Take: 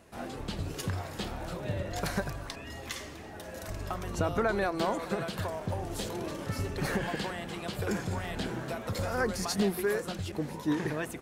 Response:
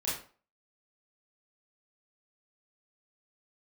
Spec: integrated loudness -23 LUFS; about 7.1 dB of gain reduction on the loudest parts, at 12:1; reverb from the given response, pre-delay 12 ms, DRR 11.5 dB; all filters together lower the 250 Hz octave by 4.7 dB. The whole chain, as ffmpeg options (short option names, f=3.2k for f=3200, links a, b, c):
-filter_complex "[0:a]equalizer=f=250:t=o:g=-7,acompressor=threshold=-32dB:ratio=12,asplit=2[a][b];[1:a]atrim=start_sample=2205,adelay=12[c];[b][c]afir=irnorm=-1:irlink=0,volume=-17dB[d];[a][d]amix=inputs=2:normalize=0,volume=15dB"